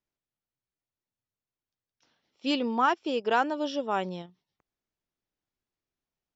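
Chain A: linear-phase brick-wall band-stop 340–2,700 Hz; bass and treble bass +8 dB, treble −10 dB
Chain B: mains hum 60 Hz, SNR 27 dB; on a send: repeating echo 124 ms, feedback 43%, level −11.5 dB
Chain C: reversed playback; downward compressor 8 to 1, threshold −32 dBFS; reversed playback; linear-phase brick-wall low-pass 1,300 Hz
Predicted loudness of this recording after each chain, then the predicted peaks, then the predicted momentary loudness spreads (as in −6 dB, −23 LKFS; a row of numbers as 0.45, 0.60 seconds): −32.0, −28.5, −38.0 LKFS; −17.0, −12.5, −23.5 dBFS; 8, 11, 7 LU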